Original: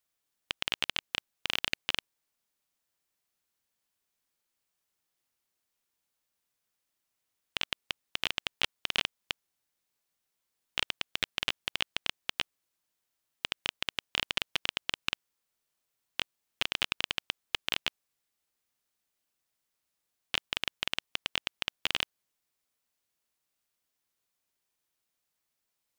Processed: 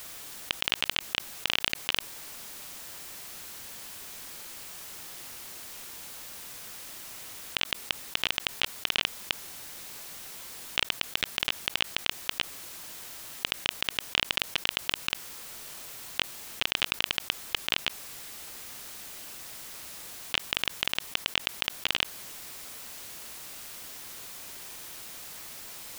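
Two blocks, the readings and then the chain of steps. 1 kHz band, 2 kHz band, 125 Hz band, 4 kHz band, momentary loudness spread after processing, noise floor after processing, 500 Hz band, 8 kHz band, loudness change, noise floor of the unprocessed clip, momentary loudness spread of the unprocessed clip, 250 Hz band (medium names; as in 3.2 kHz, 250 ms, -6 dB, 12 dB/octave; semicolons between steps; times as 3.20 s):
+4.0 dB, +4.0 dB, +4.0 dB, +4.0 dB, 12 LU, -46 dBFS, +4.0 dB, +9.5 dB, +1.0 dB, -83 dBFS, 6 LU, +4.0 dB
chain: level flattener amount 70%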